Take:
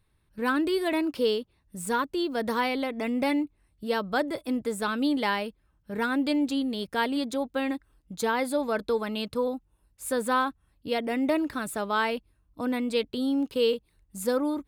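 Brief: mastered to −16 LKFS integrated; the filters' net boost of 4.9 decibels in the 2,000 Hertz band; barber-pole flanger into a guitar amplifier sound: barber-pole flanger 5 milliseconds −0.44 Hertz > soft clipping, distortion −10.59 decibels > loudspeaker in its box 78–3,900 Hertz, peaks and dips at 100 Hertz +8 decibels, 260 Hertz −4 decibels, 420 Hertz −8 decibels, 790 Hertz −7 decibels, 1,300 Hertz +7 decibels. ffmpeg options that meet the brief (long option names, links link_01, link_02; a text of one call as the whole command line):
ffmpeg -i in.wav -filter_complex "[0:a]equalizer=frequency=2000:width_type=o:gain=4.5,asplit=2[link_01][link_02];[link_02]adelay=5,afreqshift=-0.44[link_03];[link_01][link_03]amix=inputs=2:normalize=1,asoftclip=threshold=-28dB,highpass=78,equalizer=frequency=100:width_type=q:width=4:gain=8,equalizer=frequency=260:width_type=q:width=4:gain=-4,equalizer=frequency=420:width_type=q:width=4:gain=-8,equalizer=frequency=790:width_type=q:width=4:gain=-7,equalizer=frequency=1300:width_type=q:width=4:gain=7,lowpass=frequency=3900:width=0.5412,lowpass=frequency=3900:width=1.3066,volume=19.5dB" out.wav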